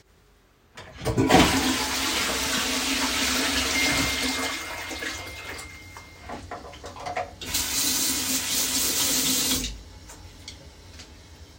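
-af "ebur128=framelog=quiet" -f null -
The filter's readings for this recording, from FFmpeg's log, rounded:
Integrated loudness:
  I:         -23.2 LUFS
  Threshold: -34.9 LUFS
Loudness range:
  LRA:         8.3 LU
  Threshold: -44.6 LUFS
  LRA low:   -30.4 LUFS
  LRA high:  -22.1 LUFS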